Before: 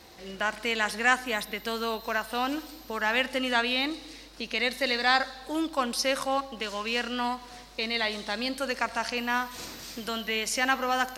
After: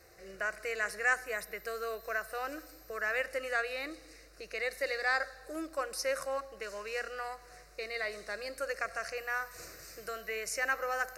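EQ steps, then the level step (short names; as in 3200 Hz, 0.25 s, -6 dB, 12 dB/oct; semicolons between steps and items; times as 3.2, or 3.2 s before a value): fixed phaser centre 900 Hz, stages 6; -4.0 dB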